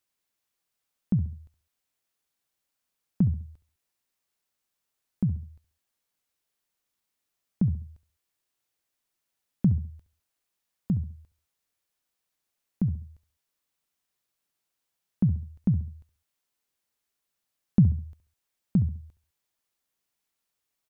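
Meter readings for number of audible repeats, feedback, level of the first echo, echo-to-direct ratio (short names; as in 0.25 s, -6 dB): 3, 33%, -15.0 dB, -14.5 dB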